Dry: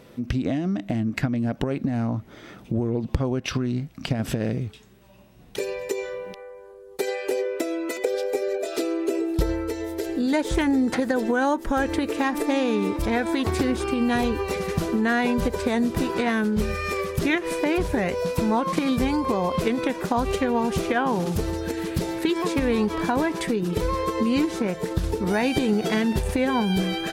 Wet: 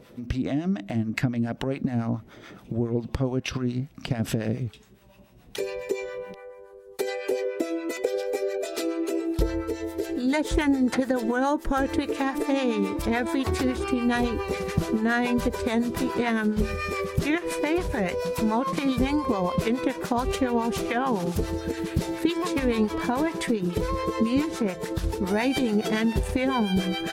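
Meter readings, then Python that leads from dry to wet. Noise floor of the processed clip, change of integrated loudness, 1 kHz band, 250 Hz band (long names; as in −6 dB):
−49 dBFS, −2.0 dB, −2.0 dB, −1.5 dB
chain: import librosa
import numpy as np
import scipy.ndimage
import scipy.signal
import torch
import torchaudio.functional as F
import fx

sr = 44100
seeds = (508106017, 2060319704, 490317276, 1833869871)

y = fx.harmonic_tremolo(x, sr, hz=7.1, depth_pct=70, crossover_hz=670.0)
y = y * 10.0 ** (1.5 / 20.0)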